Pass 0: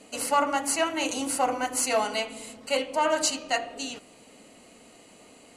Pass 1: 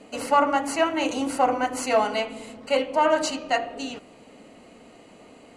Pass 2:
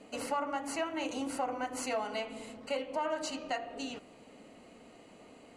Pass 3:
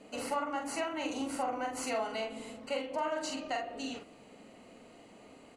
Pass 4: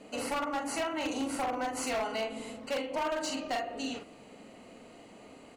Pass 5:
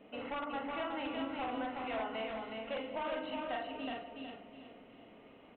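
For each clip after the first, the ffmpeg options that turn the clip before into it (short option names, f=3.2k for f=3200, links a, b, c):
-af "lowpass=f=1.9k:p=1,volume=5dB"
-af "acompressor=threshold=-28dB:ratio=2.5,volume=-6dB"
-filter_complex "[0:a]asplit=2[a][b];[b]adelay=45,volume=-4.5dB[c];[a][c]amix=inputs=2:normalize=0,volume=-1dB"
-af "aeval=exprs='0.0355*(abs(mod(val(0)/0.0355+3,4)-2)-1)':c=same,volume=3dB"
-filter_complex "[0:a]asplit=2[a][b];[b]aecho=0:1:369|738|1107|1476:0.631|0.208|0.0687|0.0227[c];[a][c]amix=inputs=2:normalize=0,aresample=8000,aresample=44100,volume=-6.5dB"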